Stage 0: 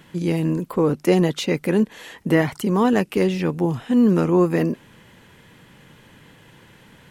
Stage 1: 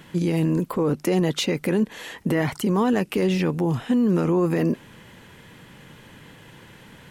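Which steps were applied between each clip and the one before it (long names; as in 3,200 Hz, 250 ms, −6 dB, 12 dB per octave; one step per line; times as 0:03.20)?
brickwall limiter −16 dBFS, peak gain reduction 10 dB
level +2.5 dB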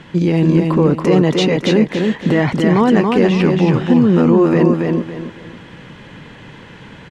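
high-frequency loss of the air 110 metres
on a send: repeating echo 279 ms, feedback 31%, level −3.5 dB
on the sum: level +8 dB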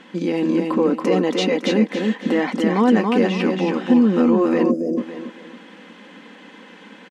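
gain on a spectral selection 0:04.71–0:04.97, 730–4,800 Hz −26 dB
linear-phase brick-wall high-pass 180 Hz
comb filter 3.9 ms, depth 39%
level −4.5 dB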